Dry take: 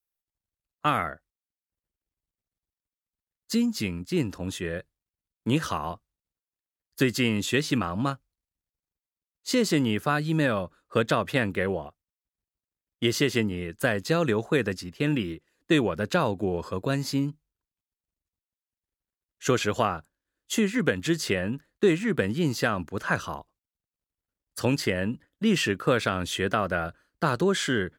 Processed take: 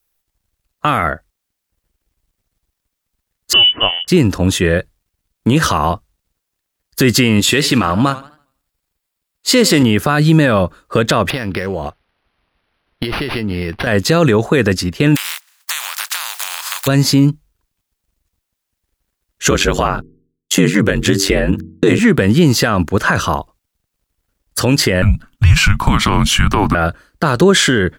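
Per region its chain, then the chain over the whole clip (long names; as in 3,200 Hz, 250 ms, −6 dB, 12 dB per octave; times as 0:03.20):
0:03.53–0:04.08: high-pass filter 250 Hz + voice inversion scrambler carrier 3,200 Hz
0:07.40–0:09.83: low-shelf EQ 330 Hz −6.5 dB + notch filter 6,100 Hz, Q 9.8 + feedback echo with a swinging delay time 81 ms, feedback 34%, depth 146 cents, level −20 dB
0:11.30–0:13.87: high-shelf EQ 3,100 Hz +11 dB + downward compressor 12 to 1, threshold −33 dBFS + linearly interpolated sample-rate reduction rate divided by 6×
0:15.15–0:16.86: compressing power law on the bin magnitudes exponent 0.29 + downward compressor 12 to 1, threshold −34 dBFS + inverse Chebyshev high-pass filter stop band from 160 Hz, stop band 80 dB
0:19.50–0:21.99: noise gate −45 dBFS, range −41 dB + hum removal 68.26 Hz, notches 6 + ring modulation 46 Hz
0:25.02–0:26.75: frequency shifter −310 Hz + downward compressor 2 to 1, threshold −28 dBFS
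whole clip: low-shelf EQ 63 Hz +8.5 dB; boost into a limiter +19 dB; level −1 dB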